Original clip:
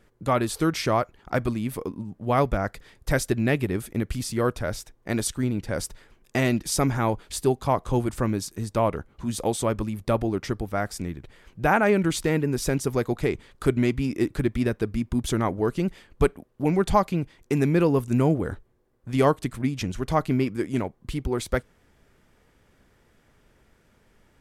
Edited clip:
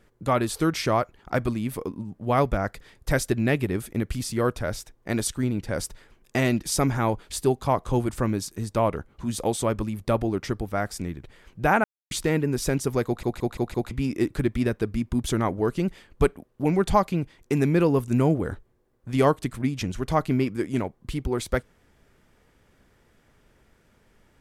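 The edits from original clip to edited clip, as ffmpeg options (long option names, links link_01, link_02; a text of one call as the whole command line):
ffmpeg -i in.wav -filter_complex "[0:a]asplit=8[link_01][link_02][link_03][link_04][link_05][link_06][link_07][link_08];[link_01]atrim=end=11.84,asetpts=PTS-STARTPTS,afade=type=out:start_time=11.836:duration=0.004:curve=hsin[link_09];[link_02]atrim=start=11.84:end=12.11,asetpts=PTS-STARTPTS,volume=0[link_10];[link_03]atrim=start=12.11:end=13.232,asetpts=PTS-STARTPTS,afade=type=in:duration=0.004:curve=hsin[link_11];[link_04]atrim=start=13.058:end=13.232[link_12];[link_05]atrim=start=13.058:end=13.232[link_13];[link_06]atrim=start=13.058:end=13.232[link_14];[link_07]atrim=start=13.058:end=13.232[link_15];[link_08]atrim=start=13.908[link_16];[link_09][link_10][link_11]concat=n=3:v=0:a=1[link_17];[link_17][link_12]acrossfade=duration=0.004:curve1=hsin:curve2=hsin[link_18];[link_18][link_13]acrossfade=duration=0.004:curve1=hsin:curve2=hsin[link_19];[link_19][link_14]acrossfade=duration=0.004:curve1=hsin:curve2=hsin[link_20];[link_20][link_15]acrossfade=duration=0.004:curve1=hsin:curve2=hsin[link_21];[link_21][link_16]acrossfade=duration=0.004:curve1=hsin:curve2=hsin" out.wav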